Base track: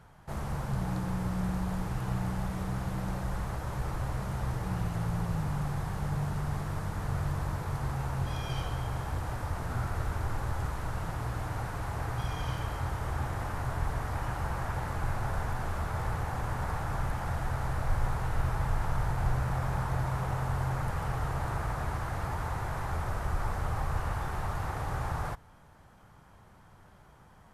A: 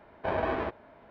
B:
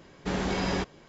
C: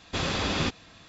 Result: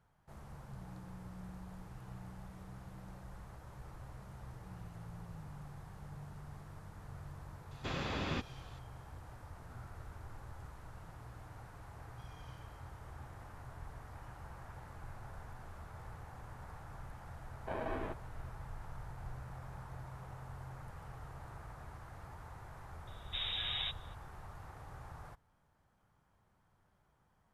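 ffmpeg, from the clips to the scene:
-filter_complex "[0:a]volume=0.141[s0];[3:a]acrossover=split=3200[s1][s2];[s2]acompressor=threshold=0.00631:ratio=4:attack=1:release=60[s3];[s1][s3]amix=inputs=2:normalize=0[s4];[1:a]equalizer=f=260:w=1.5:g=3.5[s5];[2:a]lowpass=f=3300:t=q:w=0.5098,lowpass=f=3300:t=q:w=0.6013,lowpass=f=3300:t=q:w=0.9,lowpass=f=3300:t=q:w=2.563,afreqshift=-3900[s6];[s4]atrim=end=1.08,asetpts=PTS-STARTPTS,volume=0.335,afade=t=in:d=0.004:c=hsin,afade=t=out:st=1.076:d=0.004:c=hsin,adelay=7710[s7];[s5]atrim=end=1.1,asetpts=PTS-STARTPTS,volume=0.282,afade=t=in:d=0.004:c=hsin,afade=t=out:st=1.096:d=0.004:c=hsin,adelay=17430[s8];[s6]atrim=end=1.08,asetpts=PTS-STARTPTS,volume=0.316,afade=t=in:d=0.004:c=hsin,afade=t=out:st=1.076:d=0.004:c=hsin,adelay=23070[s9];[s0][s7][s8][s9]amix=inputs=4:normalize=0"

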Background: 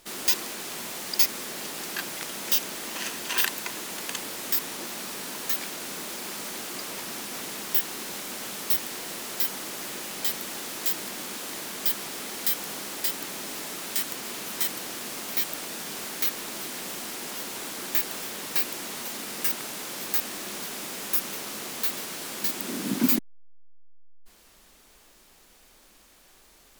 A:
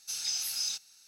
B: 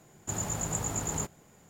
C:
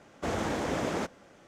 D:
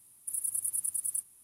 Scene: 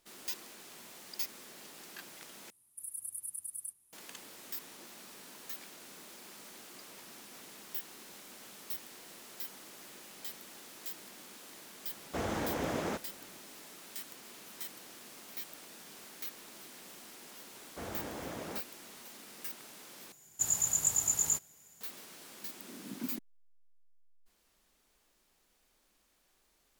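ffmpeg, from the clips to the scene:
-filter_complex "[3:a]asplit=2[s0][s1];[0:a]volume=0.158[s2];[2:a]crystalizer=i=9.5:c=0[s3];[s2]asplit=3[s4][s5][s6];[s4]atrim=end=2.504[s7];[4:a]atrim=end=1.43,asetpts=PTS-STARTPTS,volume=0.335[s8];[s5]atrim=start=3.926:end=20.124[s9];[s3]atrim=end=1.69,asetpts=PTS-STARTPTS,volume=0.188[s10];[s6]atrim=start=21.806[s11];[s0]atrim=end=1.47,asetpts=PTS-STARTPTS,volume=0.631,afade=t=in:d=0.004:c=hsin,afade=t=out:st=1.466:d=0.004:c=hsin,adelay=11910[s12];[s1]atrim=end=1.47,asetpts=PTS-STARTPTS,volume=0.266,afade=t=in:d=0.004:c=hsin,afade=t=out:st=1.466:d=0.004:c=hsin,adelay=17540[s13];[s7][s8]acrossfade=d=0.004:c1=hsin:c2=hsin[s14];[s14][s9]acrossfade=d=0.004:c1=hsin:c2=hsin[s15];[s15][s10]acrossfade=d=0.004:c1=hsin:c2=hsin[s16];[s16][s11]acrossfade=d=0.004:c1=hsin:c2=hsin[s17];[s17][s12][s13]amix=inputs=3:normalize=0"

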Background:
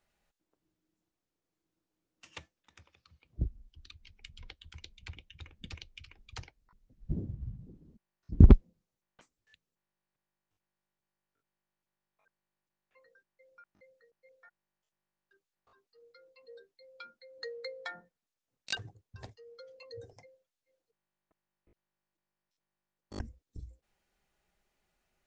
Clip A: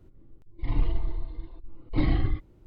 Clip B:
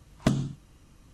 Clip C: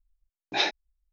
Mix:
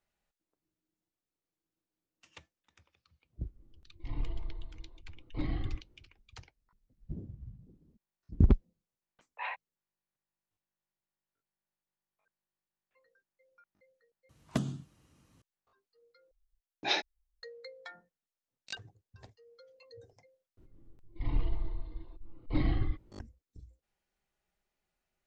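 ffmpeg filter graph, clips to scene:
-filter_complex "[1:a]asplit=2[s0][s1];[3:a]asplit=2[s2][s3];[0:a]volume=0.473[s4];[s2]highpass=f=520:t=q:w=0.5412,highpass=f=520:t=q:w=1.307,lowpass=f=2400:t=q:w=0.5176,lowpass=f=2400:t=q:w=0.7071,lowpass=f=2400:t=q:w=1.932,afreqshift=160[s5];[2:a]highpass=83[s6];[s4]asplit=3[s7][s8][s9];[s7]atrim=end=14.294[s10];[s6]atrim=end=1.13,asetpts=PTS-STARTPTS,volume=0.422[s11];[s8]atrim=start=15.416:end=16.314[s12];[s3]atrim=end=1.12,asetpts=PTS-STARTPTS,volume=0.562[s13];[s9]atrim=start=17.426[s14];[s0]atrim=end=2.66,asetpts=PTS-STARTPTS,volume=0.299,afade=t=in:d=0.004:c=hsin,afade=t=out:st=2.656:d=0.004:c=hsin,adelay=150381S[s15];[s5]atrim=end=1.12,asetpts=PTS-STARTPTS,volume=0.376,afade=t=in:d=0.004:c=hsin,afade=t=out:st=1.116:d=0.004:c=hsin,adelay=8850[s16];[s1]atrim=end=2.66,asetpts=PTS-STARTPTS,volume=0.531,afade=t=in:d=0.004:c=hsin,afade=t=out:st=2.656:d=0.004:c=hsin,adelay=20570[s17];[s10][s11]acrossfade=d=0.004:c1=hsin:c2=hsin[s18];[s18][s12]acrossfade=d=0.004:c1=hsin:c2=hsin[s19];[s19][s13]acrossfade=d=0.004:c1=hsin:c2=hsin[s20];[s20][s14]acrossfade=d=0.004:c1=hsin:c2=hsin[s21];[s21][s15][s16][s17]amix=inputs=4:normalize=0"

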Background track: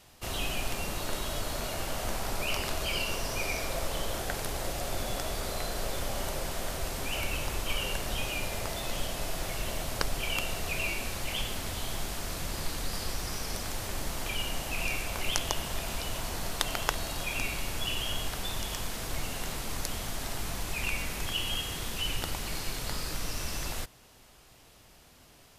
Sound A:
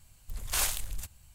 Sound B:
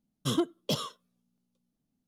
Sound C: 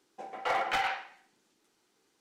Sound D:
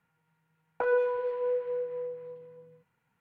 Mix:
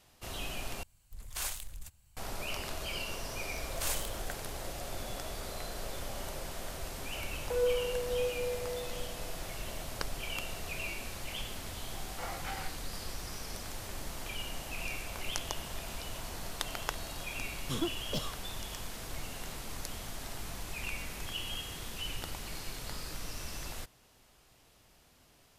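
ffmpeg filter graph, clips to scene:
-filter_complex "[1:a]asplit=2[s0][s1];[0:a]volume=0.473[s2];[4:a]equalizer=f=490:w=1.5:g=13[s3];[3:a]flanger=delay=22.5:depth=5:speed=1.4[s4];[s2]asplit=2[s5][s6];[s5]atrim=end=0.834[s7];[s0]atrim=end=1.34,asetpts=PTS-STARTPTS,volume=0.398[s8];[s6]atrim=start=2.166[s9];[s1]atrim=end=1.34,asetpts=PTS-STARTPTS,volume=0.473,afade=t=in:d=0.004:c=hsin,afade=t=out:st=1.336:d=0.004:c=hsin,adelay=3280[s10];[s3]atrim=end=3.2,asetpts=PTS-STARTPTS,volume=0.15,afade=t=in:d=0.004:c=hsin,afade=t=out:st=3.196:d=0.004:c=hsin,adelay=6700[s11];[s4]atrim=end=2.2,asetpts=PTS-STARTPTS,volume=0.335,afade=t=in:d=0.004:c=hsin,afade=t=out:st=2.196:d=0.004:c=hsin,adelay=11730[s12];[2:a]atrim=end=2.07,asetpts=PTS-STARTPTS,volume=0.473,afade=t=in:d=0.004:c=hsin,afade=t=out:st=2.066:d=0.004:c=hsin,adelay=17440[s13];[s7][s8]acrossfade=d=0.004:c1=hsin:c2=hsin[s14];[s14][s9]acrossfade=d=0.004:c1=hsin:c2=hsin[s15];[s15][s10][s11][s12][s13]amix=inputs=5:normalize=0"

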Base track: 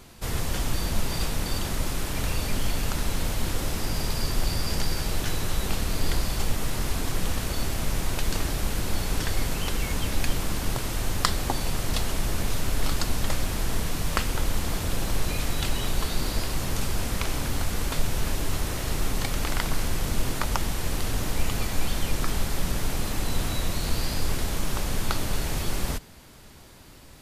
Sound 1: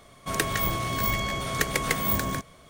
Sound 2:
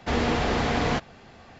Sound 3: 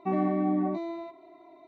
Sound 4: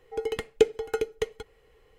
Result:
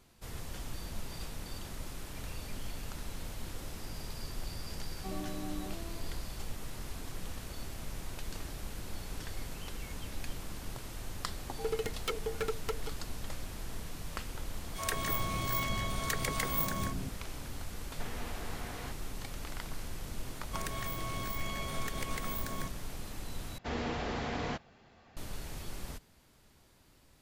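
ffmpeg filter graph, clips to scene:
-filter_complex "[1:a]asplit=2[s0][s1];[2:a]asplit=2[s2][s3];[0:a]volume=0.188[s4];[4:a]aeval=exprs='0.0708*(abs(mod(val(0)/0.0708+3,4)-2)-1)':c=same[s5];[s0]acrossover=split=400|2000[s6][s7][s8];[s7]adelay=30[s9];[s6]adelay=200[s10];[s10][s9][s8]amix=inputs=3:normalize=0[s11];[s2]acrossover=split=900|2100[s12][s13][s14];[s12]acompressor=threshold=0.02:ratio=4[s15];[s13]acompressor=threshold=0.0158:ratio=4[s16];[s14]acompressor=threshold=0.00794:ratio=4[s17];[s15][s16][s17]amix=inputs=3:normalize=0[s18];[s1]acompressor=threshold=0.0398:ratio=6:attack=3.2:release=140:knee=1:detection=peak[s19];[s4]asplit=2[s20][s21];[s20]atrim=end=23.584[s22];[s3]atrim=end=1.59,asetpts=PTS-STARTPTS,volume=0.266[s23];[s21]atrim=start=25.166[s24];[3:a]atrim=end=1.67,asetpts=PTS-STARTPTS,volume=0.178,afade=t=in:d=0.004:c=hsin,afade=t=out:st=1.666:d=0.004:c=hsin,adelay=4980[s25];[s5]atrim=end=1.98,asetpts=PTS-STARTPTS,volume=0.668,afade=t=in:d=0.004:c=hsin,afade=t=out:st=1.976:d=0.004:c=hsin,adelay=11470[s26];[s11]atrim=end=2.69,asetpts=PTS-STARTPTS,volume=0.473,afade=t=in:d=0.004:c=hsin,afade=t=out:st=2.686:d=0.004:c=hsin,adelay=14490[s27];[s18]atrim=end=1.59,asetpts=PTS-STARTPTS,volume=0.224,afade=t=in:d=0.004:c=hsin,afade=t=out:st=1.586:d=0.004:c=hsin,adelay=17930[s28];[s19]atrim=end=2.69,asetpts=PTS-STARTPTS,volume=0.447,afade=t=in:d=0.004:c=hsin,afade=t=out:st=2.686:d=0.004:c=hsin,adelay=20270[s29];[s22][s23]acrossfade=d=0.004:c1=hsin:c2=hsin[s30];[s30][s24]acrossfade=d=0.004:c1=hsin:c2=hsin[s31];[s31][s25][s26][s27][s28][s29]amix=inputs=6:normalize=0"

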